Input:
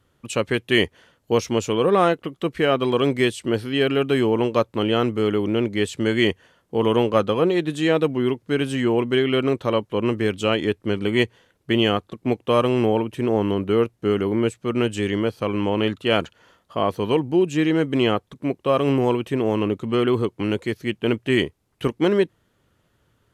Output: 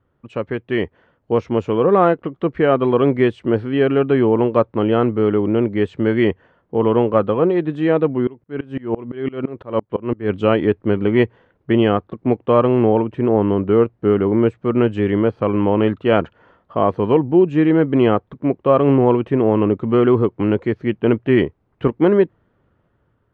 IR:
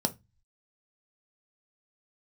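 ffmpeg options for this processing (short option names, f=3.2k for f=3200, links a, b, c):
-filter_complex "[0:a]lowpass=1.5k,dynaudnorm=f=550:g=5:m=11.5dB,asettb=1/sr,asplit=3[a][b][c];[a]atrim=end=8.274[d];[b]atrim=start=8.27:end=10.3,asetpts=PTS-STARTPTS,afade=t=in:d=0.004:c=qsin,afade=t=out:st=2.026:d=0.004:c=qsin,aeval=exprs='val(0)*pow(10,-26*if(lt(mod(-5.9*n/s,1),2*abs(-5.9)/1000),1-mod(-5.9*n/s,1)/(2*abs(-5.9)/1000),(mod(-5.9*n/s,1)-2*abs(-5.9)/1000)/(1-2*abs(-5.9)/1000))/20)':c=same[e];[c]atrim=start=10.296[f];[d][e]acrossfade=d=0.004:c1=hsin:c2=qsin[g];[g][f]acrossfade=d=0.004:c1=qsin:c2=hsin,volume=-1dB"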